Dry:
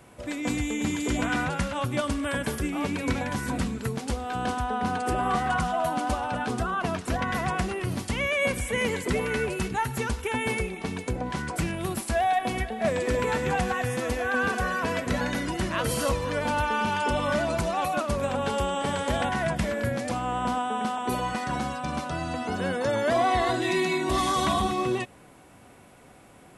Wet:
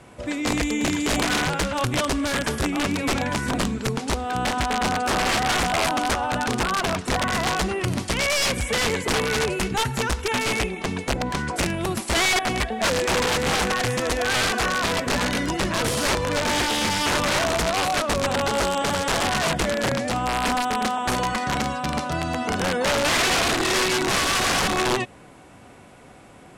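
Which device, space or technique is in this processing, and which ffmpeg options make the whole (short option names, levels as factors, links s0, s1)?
overflowing digital effects unit: -af "aeval=exprs='(mod(10.6*val(0)+1,2)-1)/10.6':c=same,lowpass=8800,volume=1.78"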